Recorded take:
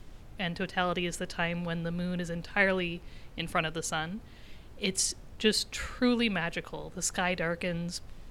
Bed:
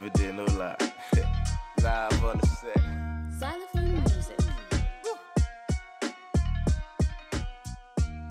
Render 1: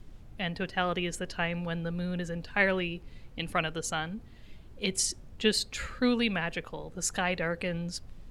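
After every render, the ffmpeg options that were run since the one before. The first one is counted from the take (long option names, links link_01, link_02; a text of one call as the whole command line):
ffmpeg -i in.wav -af "afftdn=noise_reduction=6:noise_floor=-50" out.wav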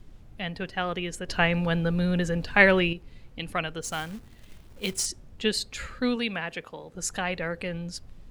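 ffmpeg -i in.wav -filter_complex "[0:a]asplit=3[link_01][link_02][link_03];[link_01]afade=type=out:start_time=3.81:duration=0.02[link_04];[link_02]acrusher=bits=3:mode=log:mix=0:aa=0.000001,afade=type=in:start_time=3.81:duration=0.02,afade=type=out:start_time=5.05:duration=0.02[link_05];[link_03]afade=type=in:start_time=5.05:duration=0.02[link_06];[link_04][link_05][link_06]amix=inputs=3:normalize=0,asettb=1/sr,asplit=3[link_07][link_08][link_09];[link_07]atrim=end=6.164[link_10];[link_08]atrim=start=6.16:end=6.94,asetpts=PTS-STARTPTS,afade=type=in:duration=0.004:curve=qsin,afade=type=out:start_time=0.776:duration=0.004:curve=qsin,highpass=frequency=190:poles=1[link_11];[link_09]atrim=start=6.936[link_12];[link_10][link_11]acrossfade=duration=0.004:curve1=hsin:curve2=qsin[link_13];[link_13][link_12]acrossfade=duration=0.004:curve1=qsin:curve2=hsin,asplit=3[link_14][link_15][link_16];[link_14]atrim=end=1.292[link_17];[link_15]atrim=start=1.288:end=2.932,asetpts=PTS-STARTPTS,volume=8dB[link_18];[link_16]atrim=start=2.928[link_19];[link_17][link_18]acrossfade=duration=0.004:curve1=hsin:curve2=hsin[link_20];[link_20][link_19]acrossfade=duration=0.004:curve1=hsin:curve2=hsin" out.wav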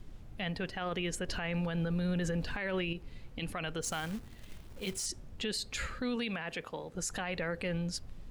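ffmpeg -i in.wav -af "acompressor=threshold=-26dB:ratio=6,alimiter=level_in=2.5dB:limit=-24dB:level=0:latency=1:release=24,volume=-2.5dB" out.wav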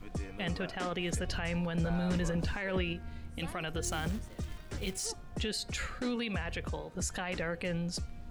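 ffmpeg -i in.wav -i bed.wav -filter_complex "[1:a]volume=-13.5dB[link_01];[0:a][link_01]amix=inputs=2:normalize=0" out.wav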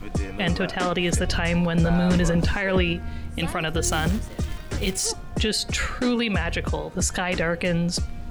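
ffmpeg -i in.wav -af "volume=11.5dB" out.wav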